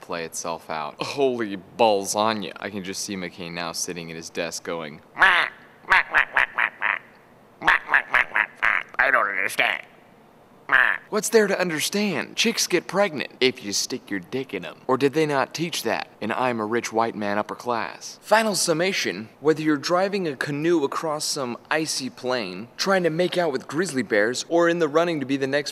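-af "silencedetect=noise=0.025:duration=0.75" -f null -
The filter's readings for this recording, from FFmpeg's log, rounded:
silence_start: 9.83
silence_end: 10.69 | silence_duration: 0.86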